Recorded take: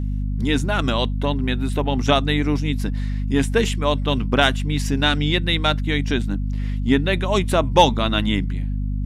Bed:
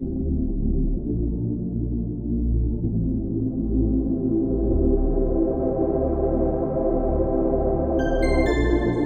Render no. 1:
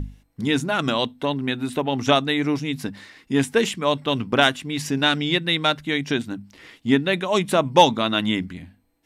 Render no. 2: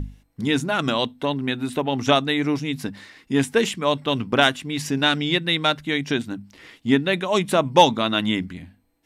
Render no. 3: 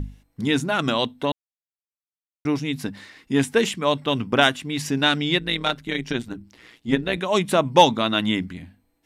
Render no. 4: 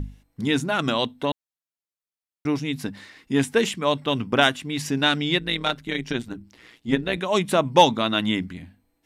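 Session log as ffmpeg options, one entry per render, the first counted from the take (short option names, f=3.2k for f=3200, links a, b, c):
-af "bandreject=f=50:t=h:w=6,bandreject=f=100:t=h:w=6,bandreject=f=150:t=h:w=6,bandreject=f=200:t=h:w=6,bandreject=f=250:t=h:w=6"
-af anull
-filter_complex "[0:a]asettb=1/sr,asplit=3[a][b][c];[a]atrim=end=4.064[d];[b]atrim=start=4.06:end=4.52,asetpts=PTS-STARTPTS,afade=t=in:d=0.004:c=qsin,afade=t=out:st=0.456:d=0.004:c=qsin,bandreject=f=4.1k:w=12[e];[c]atrim=start=4.516[f];[d][e]acrossfade=d=0.004:c1=hsin:c2=qsin[g];[g][f]acrossfade=d=0.004:c1=qsin:c2=hsin,asettb=1/sr,asplit=3[h][i][j];[h]atrim=end=5.394[k];[i]atrim=start=5.39:end=7.18,asetpts=PTS-STARTPTS,afade=t=in:d=0.004:c=qsin,afade=t=out:st=1.786:d=0.004:c=qsin,tremolo=f=120:d=0.71[l];[j]atrim=start=7.176[m];[k][l]acrossfade=d=0.004:c1=hsin:c2=qsin[n];[n][m]acrossfade=d=0.004:c1=qsin:c2=hsin,asplit=3[o][p][q];[o]atrim=end=1.32,asetpts=PTS-STARTPTS,afade=t=out:st=1.316:d=0.004:c=hsin[r];[p]atrim=start=1.32:end=2.45,asetpts=PTS-STARTPTS,volume=0[s];[q]atrim=start=2.45,asetpts=PTS-STARTPTS,afade=t=in:d=0.004:c=hsin[t];[r][s][t]concat=n=3:v=0:a=1"
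-af "volume=-1dB"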